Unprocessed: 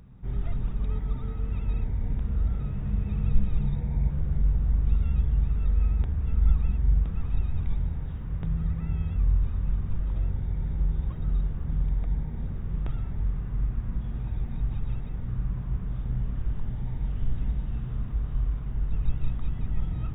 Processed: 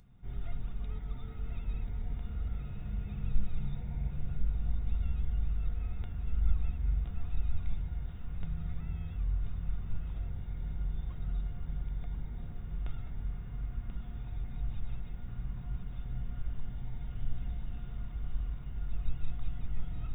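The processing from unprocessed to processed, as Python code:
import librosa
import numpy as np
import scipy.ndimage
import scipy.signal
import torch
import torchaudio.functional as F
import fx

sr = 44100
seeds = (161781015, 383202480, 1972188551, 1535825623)

y = fx.high_shelf(x, sr, hz=2200.0, db=9.0)
y = fx.comb_fb(y, sr, f0_hz=710.0, decay_s=0.17, harmonics='all', damping=0.0, mix_pct=80)
y = y + 10.0 ** (-8.0 / 20.0) * np.pad(y, (int(1035 * sr / 1000.0), 0))[:len(y)]
y = y * 10.0 ** (2.0 / 20.0)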